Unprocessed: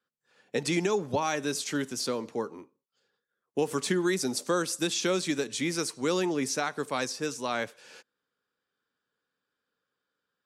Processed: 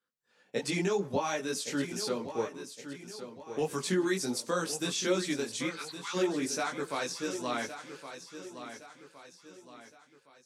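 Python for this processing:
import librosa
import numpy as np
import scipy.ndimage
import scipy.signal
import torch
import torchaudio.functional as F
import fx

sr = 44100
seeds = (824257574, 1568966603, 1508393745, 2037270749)

y = fx.cheby1_bandpass(x, sr, low_hz=830.0, high_hz=4400.0, order=5, at=(5.67, 6.13), fade=0.02)
y = fx.chorus_voices(y, sr, voices=4, hz=1.2, base_ms=19, depth_ms=3.0, mix_pct=50)
y = fx.echo_feedback(y, sr, ms=1115, feedback_pct=42, wet_db=-11)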